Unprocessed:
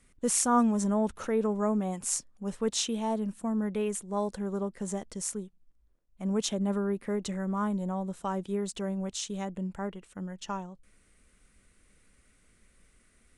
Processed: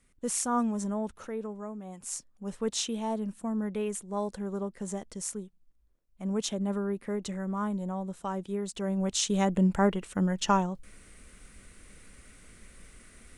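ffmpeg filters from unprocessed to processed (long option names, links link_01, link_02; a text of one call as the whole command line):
ffmpeg -i in.wav -af "volume=20dB,afade=type=out:start_time=0.81:duration=0.96:silence=0.354813,afade=type=in:start_time=1.77:duration=0.83:silence=0.266073,afade=type=in:start_time=8.74:duration=0.92:silence=0.237137" out.wav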